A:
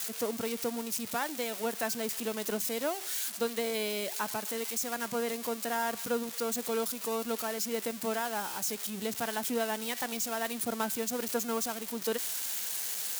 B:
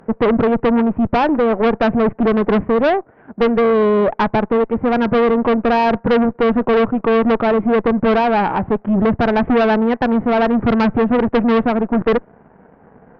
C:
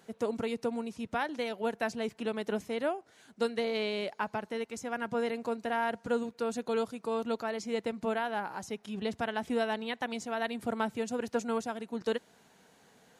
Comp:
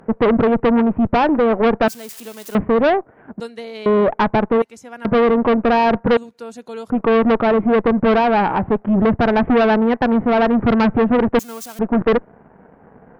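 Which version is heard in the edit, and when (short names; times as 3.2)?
B
1.88–2.55 from A
3.4–3.86 from C
4.62–5.05 from C
6.17–6.9 from C
11.39–11.79 from A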